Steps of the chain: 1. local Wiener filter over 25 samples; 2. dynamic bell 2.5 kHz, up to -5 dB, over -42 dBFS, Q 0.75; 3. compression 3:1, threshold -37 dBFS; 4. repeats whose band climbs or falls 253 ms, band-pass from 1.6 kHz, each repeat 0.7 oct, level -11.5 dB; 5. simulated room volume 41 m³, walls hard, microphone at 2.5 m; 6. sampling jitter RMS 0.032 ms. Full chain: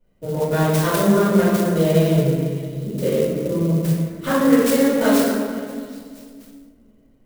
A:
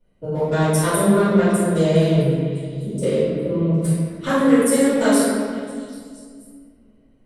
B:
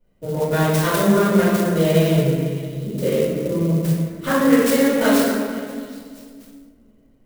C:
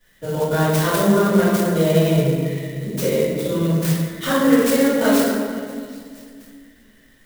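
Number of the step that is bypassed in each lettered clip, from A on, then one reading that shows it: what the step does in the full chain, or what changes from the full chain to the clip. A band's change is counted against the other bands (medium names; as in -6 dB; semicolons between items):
6, 8 kHz band +4.0 dB; 2, 2 kHz band +2.5 dB; 1, 4 kHz band +2.0 dB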